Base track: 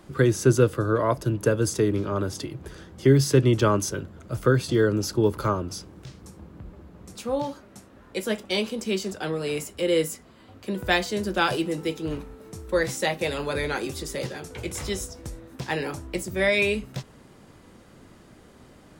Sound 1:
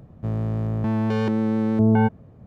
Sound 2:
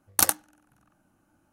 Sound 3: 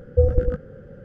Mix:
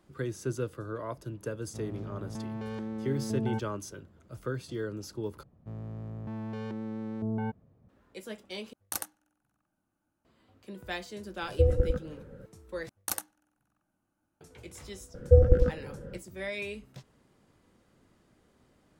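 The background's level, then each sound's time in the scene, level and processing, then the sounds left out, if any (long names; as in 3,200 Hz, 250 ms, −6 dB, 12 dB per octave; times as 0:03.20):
base track −14.5 dB
0:01.51: mix in 1 −14.5 dB + parametric band 84 Hz −3.5 dB
0:05.43: overwrite with 1 −15 dB
0:08.73: overwrite with 2 −14 dB
0:11.42: mix in 3 −6 dB
0:12.89: overwrite with 2 −12.5 dB
0:15.14: mix in 3 −1 dB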